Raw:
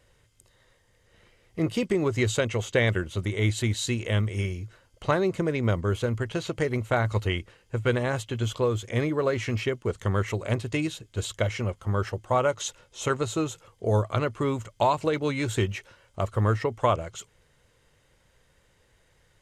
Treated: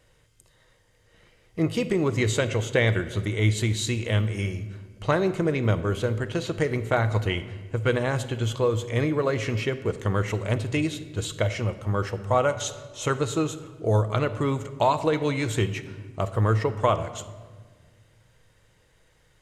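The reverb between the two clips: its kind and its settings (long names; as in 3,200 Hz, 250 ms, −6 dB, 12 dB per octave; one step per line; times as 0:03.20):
rectangular room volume 1,500 cubic metres, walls mixed, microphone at 0.56 metres
level +1 dB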